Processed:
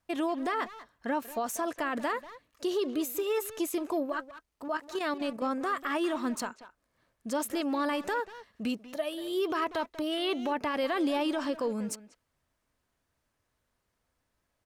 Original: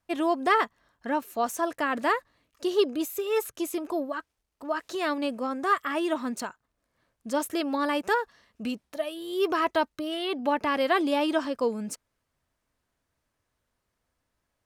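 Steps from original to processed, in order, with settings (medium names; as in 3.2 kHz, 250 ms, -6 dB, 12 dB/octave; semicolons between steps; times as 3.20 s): 4.68–5.42 s: level held to a coarse grid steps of 10 dB; peak limiter -22.5 dBFS, peak gain reduction 12 dB; speakerphone echo 190 ms, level -12 dB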